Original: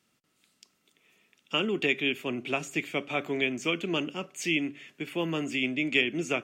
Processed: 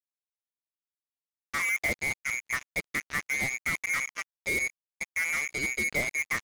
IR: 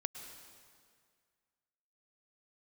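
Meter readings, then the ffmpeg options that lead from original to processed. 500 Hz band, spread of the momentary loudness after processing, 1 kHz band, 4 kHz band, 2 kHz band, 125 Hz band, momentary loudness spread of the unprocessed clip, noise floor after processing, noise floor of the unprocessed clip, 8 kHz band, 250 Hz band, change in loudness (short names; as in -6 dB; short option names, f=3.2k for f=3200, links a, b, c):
-10.5 dB, 6 LU, -1.5 dB, -10.0 dB, +3.5 dB, -5.5 dB, 7 LU, under -85 dBFS, -73 dBFS, +8.0 dB, -13.5 dB, 0.0 dB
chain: -af "lowpass=f=2.1k:t=q:w=0.5098,lowpass=f=2.1k:t=q:w=0.6013,lowpass=f=2.1k:t=q:w=0.9,lowpass=f=2.1k:t=q:w=2.563,afreqshift=-2500,acrusher=bits=4:mix=0:aa=0.5"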